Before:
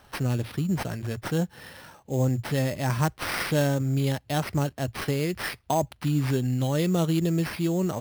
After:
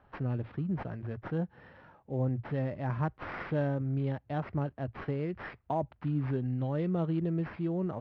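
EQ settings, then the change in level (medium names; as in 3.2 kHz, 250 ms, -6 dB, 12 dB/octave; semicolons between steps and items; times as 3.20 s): low-pass 1.7 kHz 12 dB/octave; distance through air 98 m; -6.5 dB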